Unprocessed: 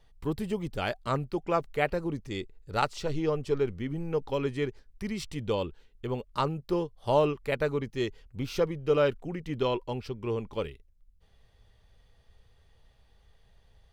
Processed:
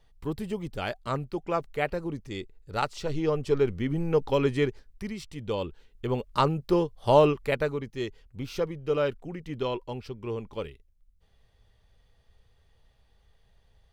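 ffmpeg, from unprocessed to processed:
-af "volume=16dB,afade=t=in:st=2.9:d=1.1:silence=0.473151,afade=t=out:st=4.58:d=0.67:silence=0.281838,afade=t=in:st=5.25:d=1.03:silence=0.298538,afade=t=out:st=7.34:d=0.43:silence=0.446684"

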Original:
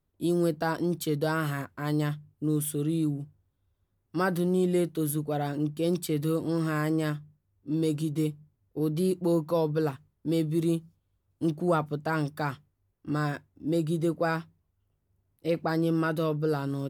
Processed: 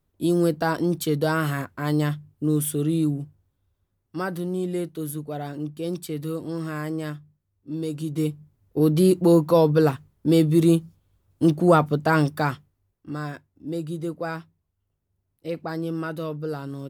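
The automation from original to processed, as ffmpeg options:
-af "volume=16dB,afade=t=out:st=3.13:d=1.15:silence=0.446684,afade=t=in:st=7.94:d=0.84:silence=0.281838,afade=t=out:st=12.18:d=0.91:silence=0.266073"

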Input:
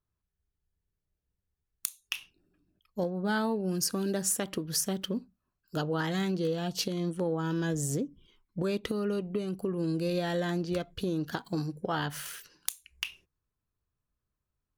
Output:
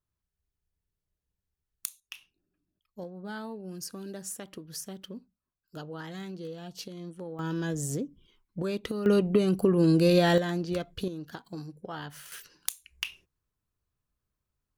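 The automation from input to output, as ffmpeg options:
-af "asetnsamples=n=441:p=0,asendcmd='2 volume volume -9.5dB;7.39 volume volume -1dB;9.06 volume volume 9dB;10.38 volume volume 0.5dB;11.08 volume volume -7.5dB;12.32 volume volume 1dB',volume=-2dB"

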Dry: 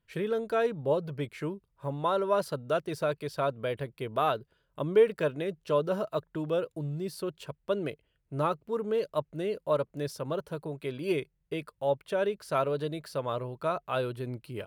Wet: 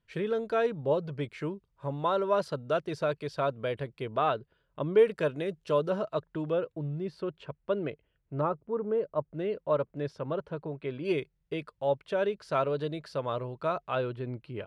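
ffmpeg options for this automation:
-af "asetnsamples=n=441:p=0,asendcmd='4.08 lowpass f 3700;4.99 lowpass f 8700;5.9 lowpass f 4900;6.52 lowpass f 2700;8.41 lowpass f 1300;9.34 lowpass f 2700;11.05 lowpass f 5500;13.95 lowpass f 3100',lowpass=6.1k"

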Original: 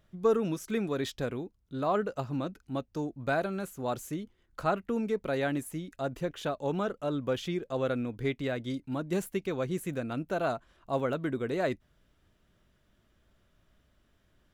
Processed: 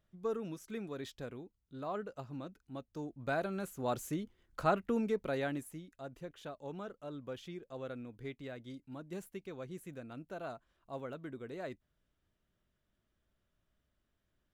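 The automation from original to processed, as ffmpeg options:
-af "volume=-1.5dB,afade=t=in:st=2.79:d=1.28:silence=0.334965,afade=t=out:st=4.89:d=1.03:silence=0.266073"

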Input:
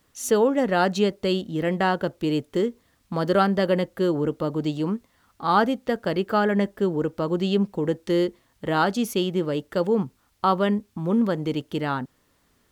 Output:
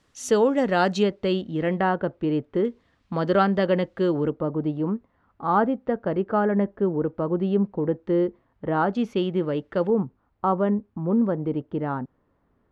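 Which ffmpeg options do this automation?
-af "asetnsamples=n=441:p=0,asendcmd='1.03 lowpass f 3100;1.81 lowpass f 1800;2.65 lowpass f 3500;4.3 lowpass f 1300;8.95 lowpass f 2400;9.9 lowpass f 1100',lowpass=7.1k"

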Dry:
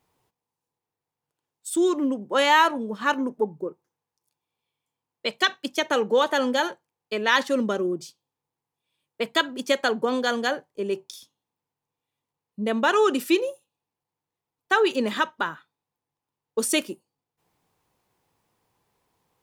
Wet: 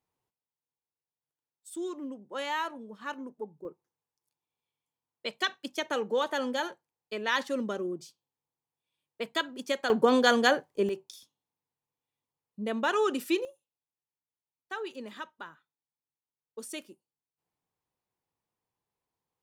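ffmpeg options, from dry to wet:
-af "asetnsamples=n=441:p=0,asendcmd='3.65 volume volume -8dB;9.9 volume volume 2dB;10.89 volume volume -7dB;13.45 volume volume -17dB',volume=-14.5dB"

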